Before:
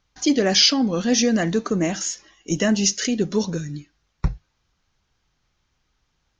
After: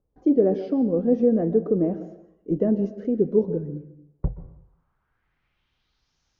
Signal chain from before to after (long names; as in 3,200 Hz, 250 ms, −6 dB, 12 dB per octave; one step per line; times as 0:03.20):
low-pass filter sweep 470 Hz → 5,900 Hz, 0:04.13–0:06.20
dense smooth reverb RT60 0.74 s, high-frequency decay 0.65×, pre-delay 115 ms, DRR 13 dB
level −4 dB